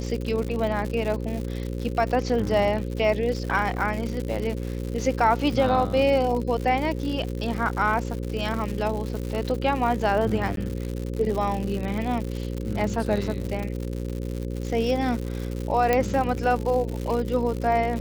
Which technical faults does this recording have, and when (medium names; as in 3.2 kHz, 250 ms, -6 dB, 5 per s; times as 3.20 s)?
buzz 60 Hz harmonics 9 -30 dBFS
crackle 150 per s -29 dBFS
10.56–10.57 s: dropout 12 ms
15.93 s: pop -8 dBFS